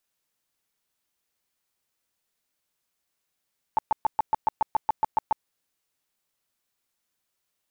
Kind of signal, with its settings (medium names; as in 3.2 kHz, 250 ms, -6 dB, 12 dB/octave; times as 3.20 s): tone bursts 876 Hz, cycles 14, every 0.14 s, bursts 12, -17 dBFS